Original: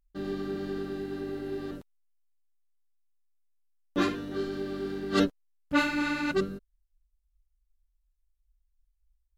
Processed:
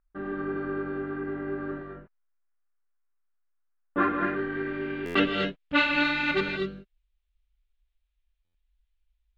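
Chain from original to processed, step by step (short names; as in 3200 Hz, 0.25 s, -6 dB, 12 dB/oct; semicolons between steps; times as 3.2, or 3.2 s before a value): resonant high shelf 3600 Hz -11 dB, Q 1.5; non-linear reverb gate 0.27 s rising, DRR 2.5 dB; low-pass sweep 1400 Hz -> 3700 Hz, 4.13–5.63; tone controls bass -3 dB, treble +11 dB; stuck buffer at 5.05/8.44, samples 512, times 8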